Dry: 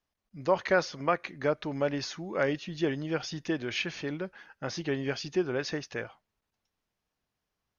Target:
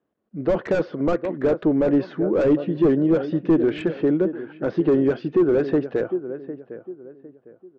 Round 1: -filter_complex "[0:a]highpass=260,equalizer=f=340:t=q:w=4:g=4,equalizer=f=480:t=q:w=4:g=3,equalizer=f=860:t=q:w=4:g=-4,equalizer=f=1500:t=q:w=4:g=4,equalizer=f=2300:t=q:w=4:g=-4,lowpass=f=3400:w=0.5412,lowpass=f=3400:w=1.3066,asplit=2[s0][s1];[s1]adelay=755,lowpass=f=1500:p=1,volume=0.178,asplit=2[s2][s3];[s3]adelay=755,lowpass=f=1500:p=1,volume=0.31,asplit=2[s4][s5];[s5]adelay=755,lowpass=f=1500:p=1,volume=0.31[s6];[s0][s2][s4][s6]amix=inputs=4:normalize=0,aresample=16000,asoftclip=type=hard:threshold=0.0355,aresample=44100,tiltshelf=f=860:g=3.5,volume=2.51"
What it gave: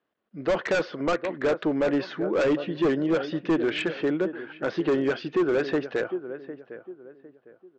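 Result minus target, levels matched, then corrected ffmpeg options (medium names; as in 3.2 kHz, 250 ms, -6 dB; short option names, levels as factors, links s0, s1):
1 kHz band +5.5 dB
-filter_complex "[0:a]highpass=260,equalizer=f=340:t=q:w=4:g=4,equalizer=f=480:t=q:w=4:g=3,equalizer=f=860:t=q:w=4:g=-4,equalizer=f=1500:t=q:w=4:g=4,equalizer=f=2300:t=q:w=4:g=-4,lowpass=f=3400:w=0.5412,lowpass=f=3400:w=1.3066,asplit=2[s0][s1];[s1]adelay=755,lowpass=f=1500:p=1,volume=0.178,asplit=2[s2][s3];[s3]adelay=755,lowpass=f=1500:p=1,volume=0.31,asplit=2[s4][s5];[s5]adelay=755,lowpass=f=1500:p=1,volume=0.31[s6];[s0][s2][s4][s6]amix=inputs=4:normalize=0,aresample=16000,asoftclip=type=hard:threshold=0.0355,aresample=44100,tiltshelf=f=860:g=12.5,volume=2.51"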